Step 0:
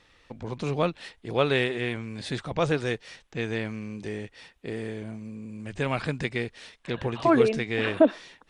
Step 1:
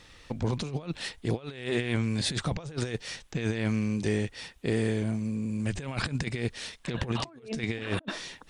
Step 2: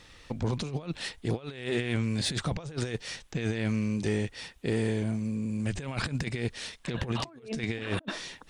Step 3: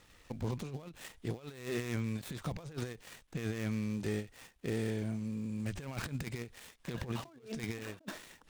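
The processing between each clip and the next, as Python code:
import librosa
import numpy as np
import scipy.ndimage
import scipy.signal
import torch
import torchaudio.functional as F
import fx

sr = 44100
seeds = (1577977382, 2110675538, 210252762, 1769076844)

y1 = fx.bass_treble(x, sr, bass_db=5, treble_db=7)
y1 = fx.over_compress(y1, sr, threshold_db=-30.0, ratio=-0.5)
y2 = 10.0 ** (-17.5 / 20.0) * np.tanh(y1 / 10.0 ** (-17.5 / 20.0))
y3 = fx.dead_time(y2, sr, dead_ms=0.11)
y3 = fx.end_taper(y3, sr, db_per_s=220.0)
y3 = y3 * librosa.db_to_amplitude(-6.5)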